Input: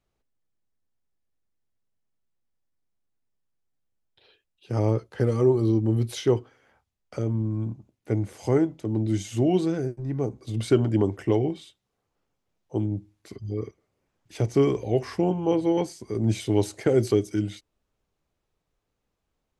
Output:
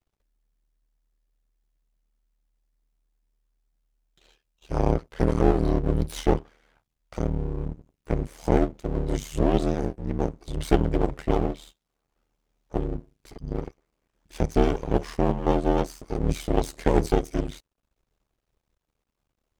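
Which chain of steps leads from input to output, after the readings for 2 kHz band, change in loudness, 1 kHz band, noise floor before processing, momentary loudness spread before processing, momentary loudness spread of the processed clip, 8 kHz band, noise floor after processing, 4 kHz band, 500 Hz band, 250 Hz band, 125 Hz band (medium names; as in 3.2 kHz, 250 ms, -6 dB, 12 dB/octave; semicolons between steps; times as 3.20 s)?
+2.5 dB, -1.0 dB, +6.0 dB, -80 dBFS, 11 LU, 11 LU, -1.0 dB, -82 dBFS, -1.0 dB, -1.5 dB, -1.5 dB, -2.5 dB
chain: half-wave rectifier; ring modulator 38 Hz; trim +6 dB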